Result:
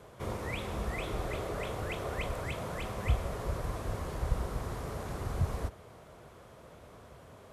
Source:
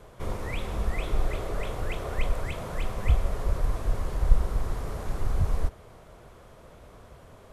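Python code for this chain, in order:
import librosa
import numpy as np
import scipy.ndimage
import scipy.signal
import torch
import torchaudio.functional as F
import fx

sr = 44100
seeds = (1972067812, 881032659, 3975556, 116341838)

y = scipy.signal.sosfilt(scipy.signal.butter(2, 73.0, 'highpass', fs=sr, output='sos'), x)
y = y * librosa.db_to_amplitude(-1.5)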